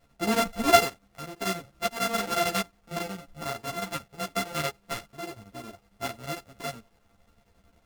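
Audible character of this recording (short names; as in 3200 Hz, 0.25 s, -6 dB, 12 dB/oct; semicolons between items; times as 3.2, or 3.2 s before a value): a buzz of ramps at a fixed pitch in blocks of 64 samples; chopped level 11 Hz, depth 65%, duty 70%; a quantiser's noise floor 12-bit, dither none; a shimmering, thickened sound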